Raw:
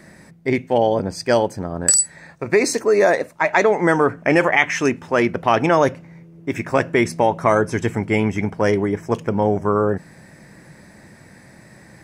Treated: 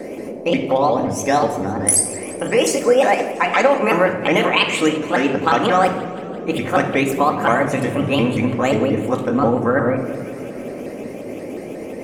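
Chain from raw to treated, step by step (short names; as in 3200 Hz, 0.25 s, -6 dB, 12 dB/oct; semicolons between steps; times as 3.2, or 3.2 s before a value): repeated pitch sweeps +6 st, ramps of 0.178 s; in parallel at +2 dB: compressor, threshold -28 dBFS, peak gain reduction 16 dB; on the sum: shoebox room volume 2600 m³, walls furnished, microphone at 2.1 m; band noise 220–600 Hz -28 dBFS; warbling echo 0.172 s, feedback 70%, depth 108 cents, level -18 dB; gain -2.5 dB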